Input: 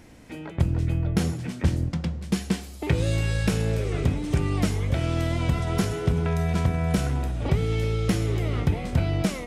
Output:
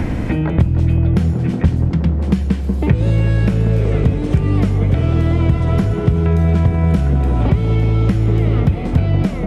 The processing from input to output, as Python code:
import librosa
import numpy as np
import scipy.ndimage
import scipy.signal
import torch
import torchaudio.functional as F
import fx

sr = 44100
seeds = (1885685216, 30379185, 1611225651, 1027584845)

y = fx.bass_treble(x, sr, bass_db=8, treble_db=-10)
y = fx.echo_wet_bandpass(y, sr, ms=185, feedback_pct=78, hz=520.0, wet_db=-5.0)
y = fx.band_squash(y, sr, depth_pct=100)
y = y * 10.0 ** (2.0 / 20.0)